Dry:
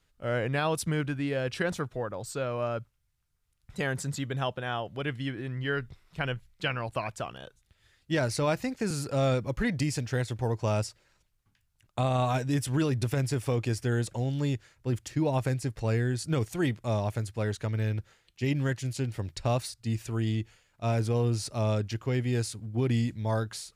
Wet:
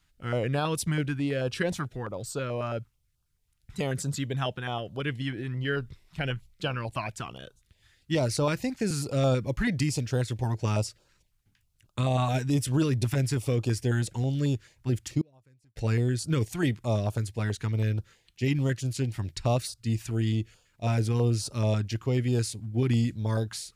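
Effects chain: 15.21–15.76 flipped gate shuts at -29 dBFS, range -34 dB; stepped notch 9.2 Hz 480–2000 Hz; gain +2.5 dB

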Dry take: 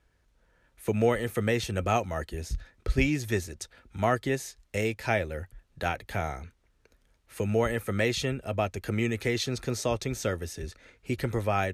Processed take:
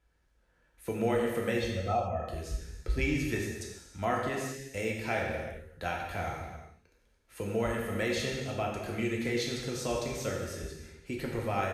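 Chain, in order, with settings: 1.59–2.26 spectral contrast raised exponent 1.8; non-linear reverb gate 0.44 s falling, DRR -2 dB; downsampling 32000 Hz; gain -7 dB

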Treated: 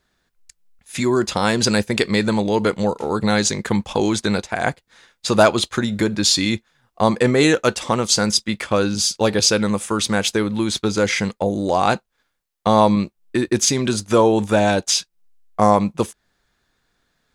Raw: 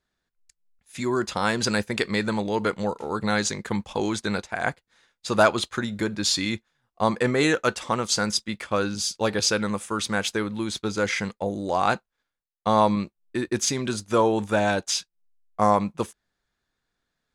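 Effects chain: dynamic EQ 1400 Hz, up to -5 dB, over -37 dBFS, Q 1; in parallel at -1 dB: compressor, threshold -37 dBFS, peak gain reduction 20 dB; on the sum: gain +6 dB

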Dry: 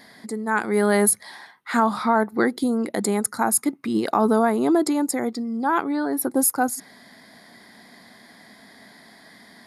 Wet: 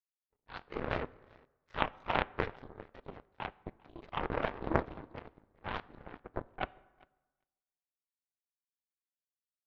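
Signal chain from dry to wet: opening faded in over 0.65 s; Chebyshev high-pass 350 Hz, order 2; LPC vocoder at 8 kHz whisper; feedback echo 0.397 s, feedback 36%, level -9 dB; power-law curve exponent 3; plate-style reverb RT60 1.2 s, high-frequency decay 0.55×, DRR 19.5 dB; Doppler distortion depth 0.65 ms

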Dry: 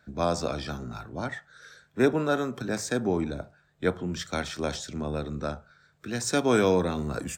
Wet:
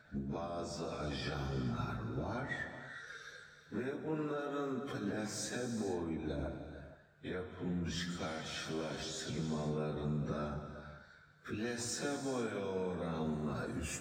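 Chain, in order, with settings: high shelf 5100 Hz -8 dB; compressor 16:1, threshold -32 dBFS, peak gain reduction 16.5 dB; limiter -30.5 dBFS, peak gain reduction 8.5 dB; plain phase-vocoder stretch 1.9×; on a send: reverb, pre-delay 3 ms, DRR 7 dB; on the sum: gain +2.5 dB

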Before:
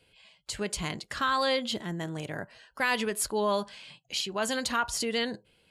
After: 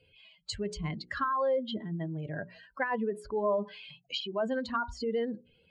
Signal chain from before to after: spectral contrast raised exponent 2.1; notches 60/120/180/240/300/360/420 Hz; treble ducked by the level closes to 1100 Hz, closed at -25 dBFS

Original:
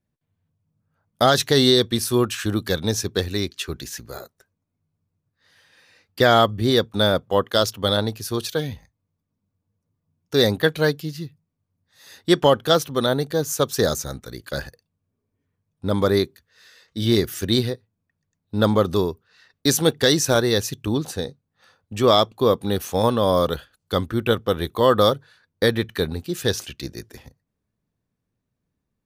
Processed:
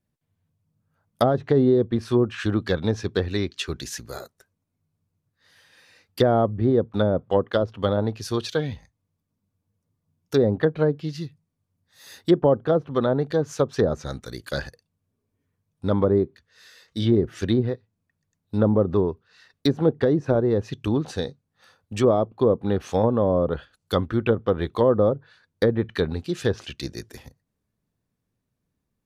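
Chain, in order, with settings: treble ducked by the level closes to 610 Hz, closed at -14.5 dBFS; high shelf 8400 Hz +3.5 dB

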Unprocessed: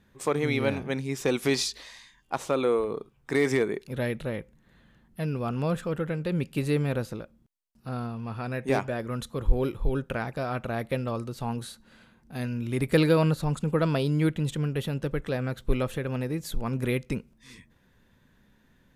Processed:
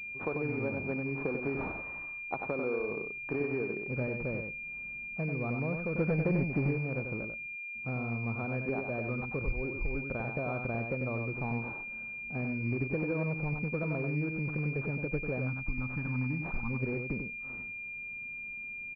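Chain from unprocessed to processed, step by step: 15.39–16.7 spectral gain 320–780 Hz -19 dB; compressor 6:1, threshold -31 dBFS, peak gain reduction 16 dB; 5.95–6.69 sample leveller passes 2; on a send: echo 94 ms -5.5 dB; on the sum: pulse-width modulation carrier 2400 Hz

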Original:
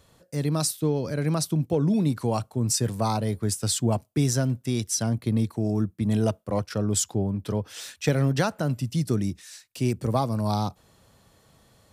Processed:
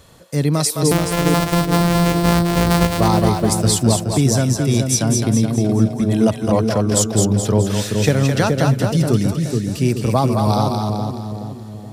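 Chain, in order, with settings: 0.91–3 sample sorter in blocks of 256 samples; vocal rider within 4 dB 0.5 s; split-band echo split 510 Hz, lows 0.424 s, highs 0.212 s, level -4 dB; gain +7.5 dB

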